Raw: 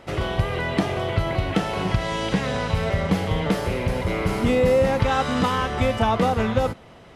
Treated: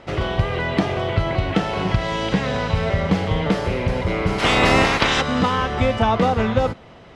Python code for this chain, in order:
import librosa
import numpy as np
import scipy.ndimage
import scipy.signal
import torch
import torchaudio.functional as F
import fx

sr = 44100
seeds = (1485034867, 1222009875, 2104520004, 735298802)

y = fx.spec_clip(x, sr, under_db=26, at=(4.38, 5.2), fade=0.02)
y = scipy.signal.sosfilt(scipy.signal.butter(2, 6100.0, 'lowpass', fs=sr, output='sos'), y)
y = F.gain(torch.from_numpy(y), 2.5).numpy()